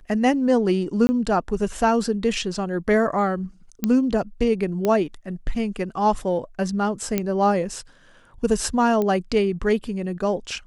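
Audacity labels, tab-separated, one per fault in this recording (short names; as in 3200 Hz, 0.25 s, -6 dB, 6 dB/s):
1.070000	1.090000	gap 20 ms
3.840000	3.840000	pop -9 dBFS
4.850000	4.850000	pop -10 dBFS
7.180000	7.180000	pop -8 dBFS
9.020000	9.020000	pop -13 dBFS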